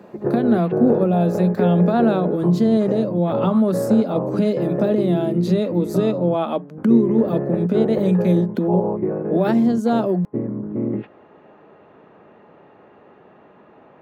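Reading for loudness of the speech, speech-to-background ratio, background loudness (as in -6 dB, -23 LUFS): -19.5 LUFS, 5.5 dB, -25.0 LUFS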